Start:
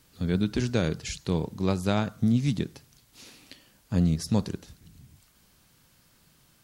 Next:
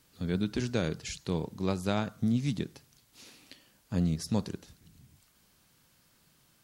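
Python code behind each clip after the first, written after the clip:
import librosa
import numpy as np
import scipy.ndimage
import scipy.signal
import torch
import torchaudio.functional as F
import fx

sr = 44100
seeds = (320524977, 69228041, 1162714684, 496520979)

y = fx.low_shelf(x, sr, hz=100.0, db=-5.5)
y = y * librosa.db_to_amplitude(-3.5)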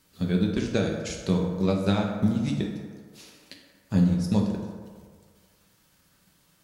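y = fx.transient(x, sr, attack_db=6, sustain_db=-7)
y = fx.rev_fdn(y, sr, rt60_s=1.8, lf_ratio=0.7, hf_ratio=0.45, size_ms=31.0, drr_db=0.0)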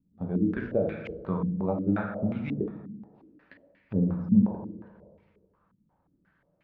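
y = fx.air_absorb(x, sr, metres=140.0)
y = fx.filter_held_lowpass(y, sr, hz=5.6, low_hz=220.0, high_hz=2300.0)
y = y * librosa.db_to_amplitude(-6.5)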